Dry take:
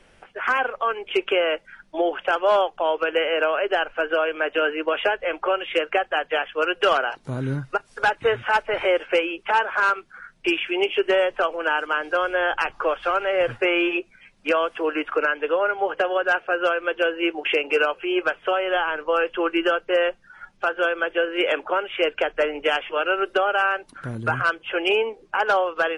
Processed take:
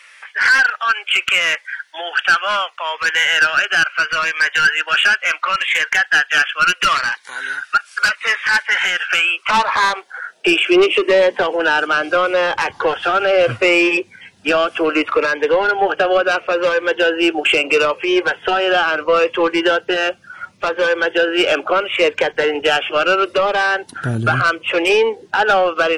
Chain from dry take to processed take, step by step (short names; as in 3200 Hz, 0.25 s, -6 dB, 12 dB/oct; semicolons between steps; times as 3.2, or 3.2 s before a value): low shelf 240 Hz -9 dB; in parallel at +2 dB: limiter -18.5 dBFS, peak gain reduction 8.5 dB; on the sum: high-pass sweep 1600 Hz -> 89 Hz, 9.03–12.4; soft clip -12 dBFS, distortion -14 dB; cascading phaser falling 0.73 Hz; gain +7 dB